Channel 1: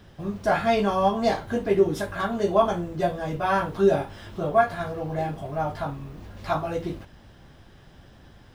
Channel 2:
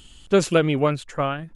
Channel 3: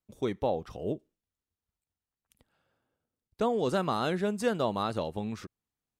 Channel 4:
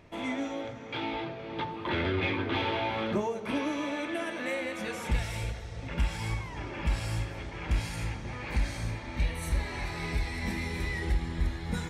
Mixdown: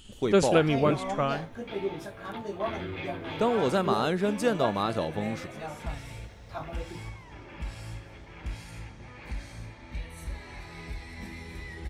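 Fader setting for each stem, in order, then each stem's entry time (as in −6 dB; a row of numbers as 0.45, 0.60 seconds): −12.5, −4.0, +2.5, −8.0 decibels; 0.05, 0.00, 0.00, 0.75 seconds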